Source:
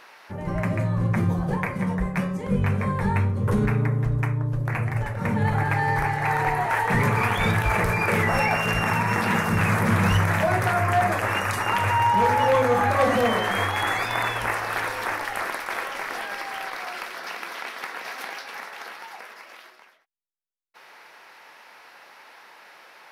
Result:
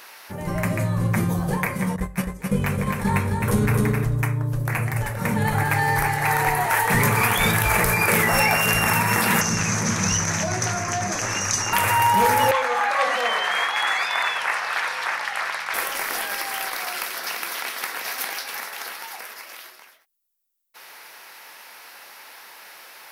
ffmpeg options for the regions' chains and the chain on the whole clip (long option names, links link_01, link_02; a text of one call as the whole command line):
ffmpeg -i in.wav -filter_complex "[0:a]asettb=1/sr,asplit=3[link_01][link_02][link_03];[link_01]atrim=end=1.964[link_04];[link_02]atrim=start=1.96:end=4.04,asetpts=PTS-STARTPTS,afade=type=in:duration=0.004:curve=qsin,afade=type=out:start_time=2.076:duration=0.004:curve=qsin,agate=range=-15dB:threshold=-25dB:ratio=16:release=100:detection=peak,aecho=1:1:262:0.631,atrim=end_sample=91728[link_05];[link_03]atrim=start=4.036[link_06];[link_04][link_05]acrossfade=duration=0.004:curve1=hsin:curve2=qsin[link_07];[link_07][link_06]acrossfade=duration=0.004:curve1=qsin:curve2=hsin,asettb=1/sr,asplit=3[link_08][link_09][link_10];[link_08]atrim=end=9.414[link_11];[link_09]atrim=start=9.41:end=11.73,asetpts=PTS-STARTPTS,afade=type=in:duration=0.004:curve=qsin,afade=type=out:start_time=2.316:duration=0.004:curve=qsin,lowpass=frequency=6100:width_type=q:width=10,acrossover=split=140|330[link_12][link_13][link_14];[link_12]acompressor=threshold=-29dB:ratio=4[link_15];[link_13]acompressor=threshold=-27dB:ratio=4[link_16];[link_14]acompressor=threshold=-29dB:ratio=4[link_17];[link_15][link_16][link_17]amix=inputs=3:normalize=0[link_18];[link_10]atrim=start=11.726[link_19];[link_11][link_18]acrossfade=duration=0.004:curve1=hsin:curve2=qsin[link_20];[link_20][link_19]acrossfade=duration=0.004:curve1=qsin:curve2=hsin,asettb=1/sr,asplit=3[link_21][link_22][link_23];[link_21]atrim=end=12.514[link_24];[link_22]atrim=start=12.51:end=15.74,asetpts=PTS-STARTPTS,afade=type=in:duration=0.004:curve=qsin,afade=type=out:start_time=3.226:duration=0.004:curve=qsin,highpass=750,lowpass=4400,aeval=exprs='val(0)+0.002*(sin(2*PI*50*n/s)+sin(2*PI*2*50*n/s)/2+sin(2*PI*3*50*n/s)/3+sin(2*PI*4*50*n/s)/4+sin(2*PI*5*50*n/s)/5)':channel_layout=same[link_25];[link_23]atrim=start=15.736[link_26];[link_24][link_25]acrossfade=duration=0.004:curve1=hsin:curve2=qsin[link_27];[link_27][link_26]acrossfade=duration=0.004:curve1=qsin:curve2=hsin,aemphasis=mode=production:type=75fm,bandreject=frequency=50:width_type=h:width=6,bandreject=frequency=100:width_type=h:width=6,volume=2dB" out.wav